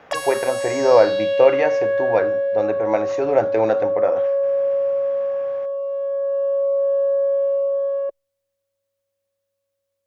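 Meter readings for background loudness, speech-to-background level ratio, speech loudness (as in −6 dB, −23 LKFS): −21.5 LKFS, 1.0 dB, −20.5 LKFS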